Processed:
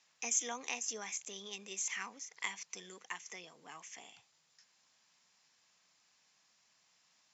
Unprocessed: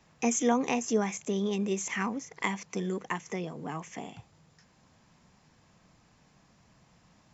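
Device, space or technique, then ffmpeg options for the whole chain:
piezo pickup straight into a mixer: -af "lowpass=5900,aderivative,volume=1.68"

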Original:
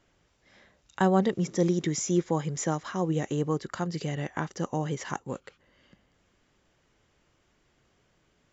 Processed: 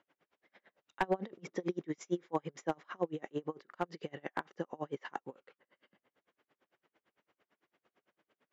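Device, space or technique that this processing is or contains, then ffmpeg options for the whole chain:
helicopter radio: -af "highpass=310,lowpass=2700,aeval=exprs='val(0)*pow(10,-34*(0.5-0.5*cos(2*PI*8.9*n/s))/20)':c=same,asoftclip=type=hard:threshold=0.0841,volume=1.12"

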